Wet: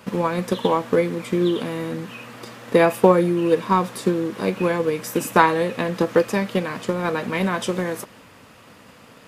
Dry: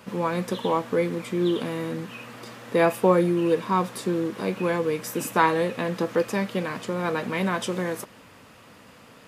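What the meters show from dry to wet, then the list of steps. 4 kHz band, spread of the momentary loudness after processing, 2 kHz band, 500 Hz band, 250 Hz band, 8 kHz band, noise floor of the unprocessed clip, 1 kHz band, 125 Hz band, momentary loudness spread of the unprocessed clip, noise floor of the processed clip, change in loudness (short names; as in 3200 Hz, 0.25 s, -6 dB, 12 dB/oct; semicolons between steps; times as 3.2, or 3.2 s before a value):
+3.5 dB, 12 LU, +4.0 dB, +4.0 dB, +3.5 dB, +2.5 dB, -51 dBFS, +4.0 dB, +3.5 dB, 10 LU, -48 dBFS, +4.0 dB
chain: transient shaper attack +6 dB, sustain +1 dB; gain +2 dB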